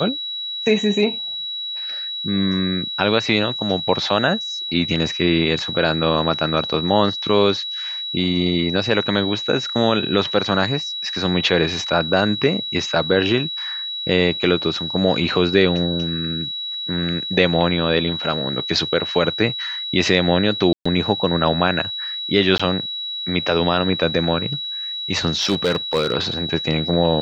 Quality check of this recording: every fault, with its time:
whine 3.9 kHz -25 dBFS
20.73–20.86 s: dropout 125 ms
22.58–22.59 s: dropout 15 ms
25.36–26.14 s: clipped -12.5 dBFS

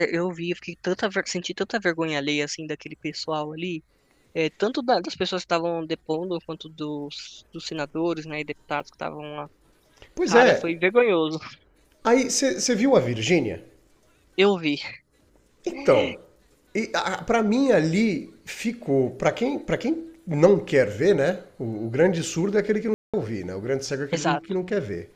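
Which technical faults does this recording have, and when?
8.80 s: dropout 4.2 ms
22.94–23.14 s: dropout 196 ms

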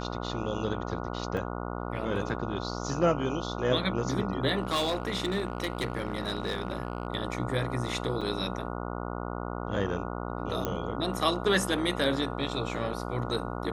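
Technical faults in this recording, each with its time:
buzz 60 Hz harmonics 24 -35 dBFS
1.37 s: dropout 2.4 ms
4.61–7.07 s: clipped -24 dBFS
8.21–8.22 s: dropout 5.6 ms
10.65 s: pop -15 dBFS

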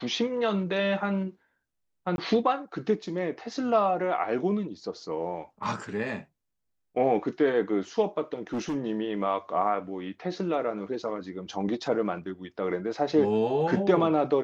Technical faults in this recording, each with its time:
2.16–2.18 s: dropout 21 ms
8.35–8.76 s: clipped -26.5 dBFS

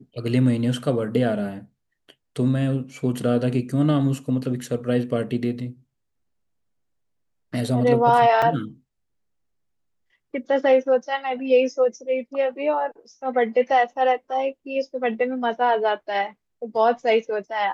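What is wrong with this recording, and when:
8.42 s: dropout 4.6 ms

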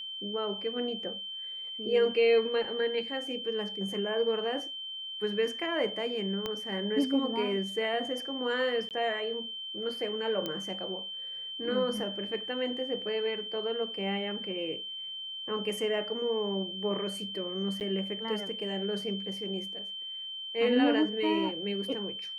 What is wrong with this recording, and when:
whine 3.1 kHz -37 dBFS
6.46 s: pop -19 dBFS
8.89–8.91 s: dropout 18 ms
10.46 s: pop -19 dBFS
17.80–17.81 s: dropout 9 ms

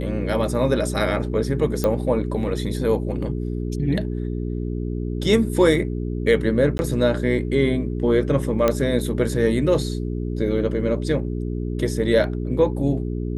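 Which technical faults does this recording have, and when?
hum 60 Hz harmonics 7 -26 dBFS
1.84 s: pop -9 dBFS
6.78–6.79 s: dropout 11 ms
8.68 s: pop -6 dBFS

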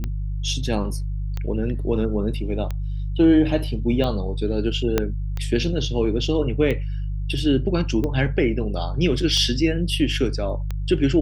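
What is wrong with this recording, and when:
hum 50 Hz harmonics 3 -26 dBFS
tick 45 rpm -15 dBFS
4.98 s: pop -5 dBFS

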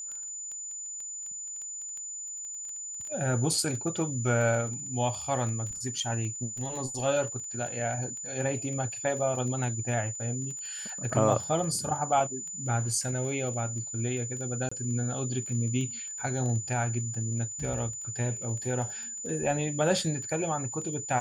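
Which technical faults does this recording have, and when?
crackle 13 per s -35 dBFS
whine 7 kHz -36 dBFS
14.69–14.71 s: dropout 25 ms

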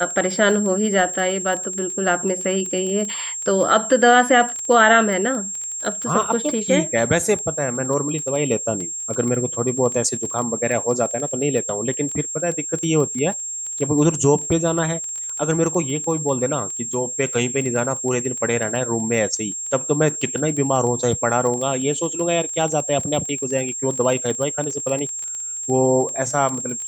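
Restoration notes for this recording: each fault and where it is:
crackle 17 per s -25 dBFS
whine 7.5 kHz -26 dBFS

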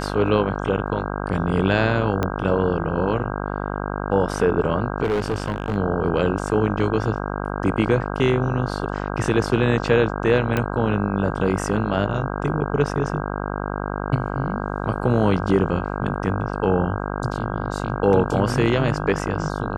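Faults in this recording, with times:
buzz 50 Hz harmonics 32 -27 dBFS
0.87 s: dropout 3.2 ms
2.23 s: pop -9 dBFS
5.03–5.76 s: clipped -17.5 dBFS
10.57 s: pop -9 dBFS

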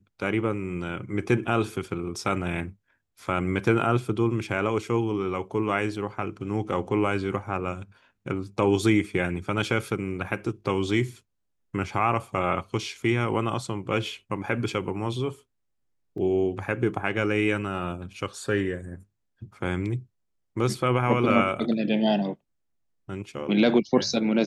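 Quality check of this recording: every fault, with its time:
16.18 s: dropout 2.5 ms

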